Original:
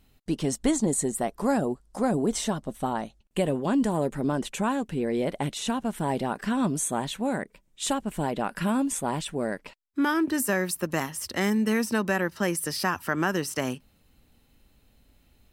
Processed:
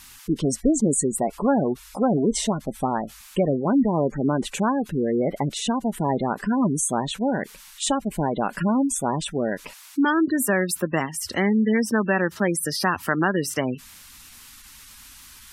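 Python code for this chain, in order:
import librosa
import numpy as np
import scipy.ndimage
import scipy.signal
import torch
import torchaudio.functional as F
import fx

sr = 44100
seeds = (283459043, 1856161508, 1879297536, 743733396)

y = fx.dmg_noise_band(x, sr, seeds[0], low_hz=920.0, high_hz=14000.0, level_db=-51.0)
y = fx.spec_gate(y, sr, threshold_db=-20, keep='strong')
y = y * librosa.db_to_amplitude(4.5)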